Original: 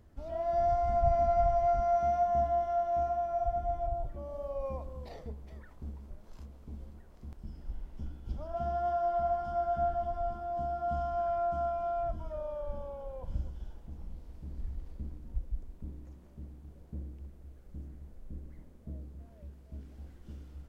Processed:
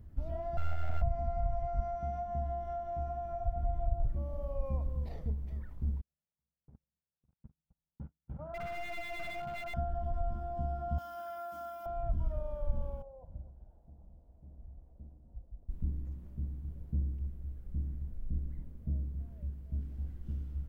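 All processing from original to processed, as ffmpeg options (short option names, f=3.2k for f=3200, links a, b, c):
-filter_complex "[0:a]asettb=1/sr,asplit=3[a][b][c];[a]atrim=end=0.574[d];[b]atrim=start=0.57:end=1.02,asetpts=PTS-STARTPTS,afade=t=in:d=0.004:c=qsin,afade=t=out:st=0.446:d=0.004:c=qsin,aeval=exprs='abs(val(0))':c=same,tremolo=f=81:d=0.621[e];[c]atrim=start=1.016[f];[d][e]acrossfade=d=0.004:c1=hsin:c2=qsin[g];[g][f]acrossfade=d=0.004:c1=qsin:c2=hsin,asettb=1/sr,asplit=3[h][i][j];[h]atrim=end=6.014[k];[i]atrim=start=6.01:end=9.74,asetpts=PTS-STARTPTS,afade=t=in:d=0.004:c=qsin,afade=t=out:st=3.726:d=0.004:c=qsin,highpass=150,equalizer=f=160:t=q:w=4:g=5,equalizer=f=230:t=q:w=4:g=-6,equalizer=f=330:t=q:w=4:g=-6,equalizer=f=520:t=q:w=4:g=5,equalizer=f=840:t=q:w=4:g=6,equalizer=f=1.3k:t=q:w=4:g=5,lowpass=f=2.1k:w=0.5412,lowpass=f=2.1k:w=1.3066,aeval=exprs='0.0282*(abs(mod(val(0)/0.0282+3,4)-2)-1)':c=same,agate=range=-44dB:threshold=-49dB:ratio=16:release=100:detection=peak[l];[j]atrim=start=9.736[m];[k][l]acrossfade=d=0.004:c1=hsin:c2=qsin[n];[n][m]acrossfade=d=0.004:c1=qsin:c2=hsin,asettb=1/sr,asplit=3[o][p][q];[o]atrim=end=10.984[r];[p]atrim=start=10.98:end=11.86,asetpts=PTS-STARTPTS,afade=t=in:d=0.004:c=qsin,afade=t=out:st=0.876:d=0.004:c=qsin,highpass=f=500:p=1,aemphasis=mode=production:type=riaa,aecho=1:1:3.5:0.51,atrim=end_sample=38808[s];[q]atrim=start=11.856[t];[r][s]acrossfade=d=0.004:c1=hsin:c2=qsin[u];[u][t]acrossfade=d=0.004:c1=qsin:c2=hsin,asettb=1/sr,asplit=3[v][w][x];[v]atrim=end=13.024[y];[w]atrim=start=13.02:end=15.69,asetpts=PTS-STARTPTS,afade=t=in:d=0.004:c=qsin,afade=t=out:st=2.666:d=0.004:c=qsin,bandpass=f=670:t=q:w=3.7,aemphasis=mode=reproduction:type=bsi[z];[x]atrim=start=15.686[aa];[y][z]acrossfade=d=0.004:c1=hsin:c2=qsin[ab];[ab][aa]acrossfade=d=0.004:c1=qsin:c2=hsin,aemphasis=mode=production:type=50fm,acompressor=threshold=-32dB:ratio=6,bass=f=250:g=14,treble=f=4k:g=-12,volume=-4.5dB"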